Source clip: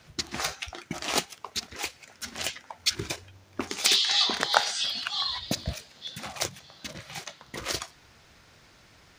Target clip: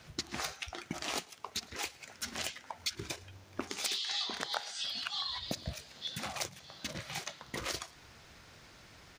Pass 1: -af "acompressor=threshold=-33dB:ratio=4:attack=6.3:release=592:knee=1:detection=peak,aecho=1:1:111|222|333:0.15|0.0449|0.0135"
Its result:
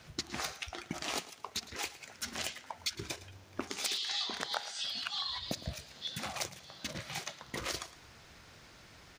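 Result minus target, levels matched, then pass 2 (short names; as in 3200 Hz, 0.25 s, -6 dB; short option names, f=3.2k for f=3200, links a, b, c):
echo-to-direct +8 dB
-af "acompressor=threshold=-33dB:ratio=4:attack=6.3:release=592:knee=1:detection=peak,aecho=1:1:111|222:0.0596|0.0179"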